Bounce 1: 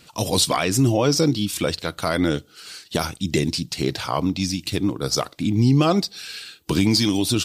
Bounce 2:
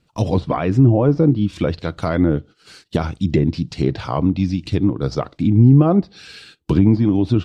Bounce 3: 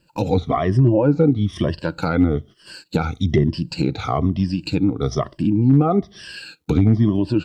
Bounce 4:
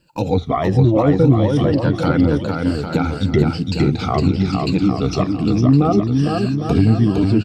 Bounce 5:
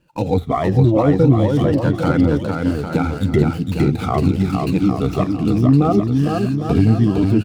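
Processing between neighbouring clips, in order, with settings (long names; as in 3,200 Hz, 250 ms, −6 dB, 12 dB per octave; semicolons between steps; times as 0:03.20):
treble cut that deepens with the level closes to 1,300 Hz, closed at −15 dBFS; noise gate −40 dBFS, range −15 dB; spectral tilt −2.5 dB per octave
rippled gain that drifts along the octave scale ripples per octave 1.3, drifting −1.1 Hz, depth 17 dB; in parallel at −1 dB: downward compressor 16 to 1, threshold −19 dBFS, peak gain reduction 15 dB; on the sum: bit-depth reduction 12 bits, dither none; level −6 dB
bouncing-ball delay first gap 460 ms, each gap 0.75×, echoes 5; level +1 dB
running median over 9 samples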